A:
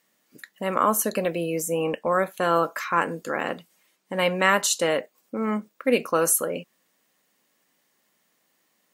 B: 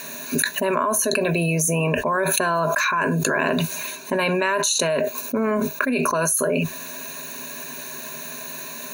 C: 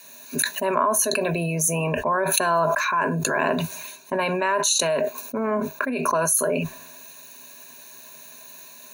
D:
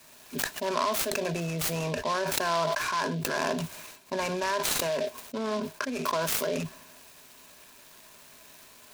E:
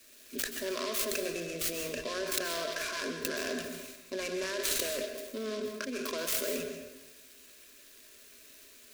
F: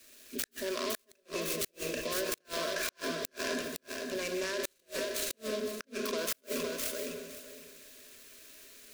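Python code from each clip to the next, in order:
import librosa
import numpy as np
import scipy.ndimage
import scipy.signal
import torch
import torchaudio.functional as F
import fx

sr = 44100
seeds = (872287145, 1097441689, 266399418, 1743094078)

y1 = fx.ripple_eq(x, sr, per_octave=1.5, db=16)
y1 = fx.env_flatten(y1, sr, amount_pct=100)
y1 = y1 * librosa.db_to_amplitude(-8.5)
y2 = fx.peak_eq(y1, sr, hz=820.0, db=6.0, octaves=0.84)
y2 = fx.band_widen(y2, sr, depth_pct=70)
y2 = y2 * librosa.db_to_amplitude(-3.5)
y3 = fx.noise_mod_delay(y2, sr, seeds[0], noise_hz=3300.0, depth_ms=0.047)
y3 = y3 * librosa.db_to_amplitude(-6.5)
y4 = fx.fixed_phaser(y3, sr, hz=360.0, stages=4)
y4 = fx.rev_plate(y4, sr, seeds[1], rt60_s=0.95, hf_ratio=0.6, predelay_ms=115, drr_db=5.0)
y4 = y4 * librosa.db_to_amplitude(-2.5)
y5 = fx.echo_feedback(y4, sr, ms=511, feedback_pct=20, wet_db=-4.5)
y5 = fx.gate_flip(y5, sr, shuts_db=-20.0, range_db=-39)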